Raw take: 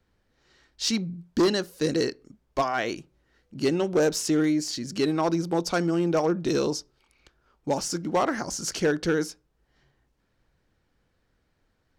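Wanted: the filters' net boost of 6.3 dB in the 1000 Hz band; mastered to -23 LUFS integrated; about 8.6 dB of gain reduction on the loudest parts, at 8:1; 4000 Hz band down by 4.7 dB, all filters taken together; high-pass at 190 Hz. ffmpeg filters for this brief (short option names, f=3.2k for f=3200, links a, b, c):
-af "highpass=190,equalizer=f=1k:t=o:g=8.5,equalizer=f=4k:t=o:g=-6.5,acompressor=threshold=-24dB:ratio=8,volume=7.5dB"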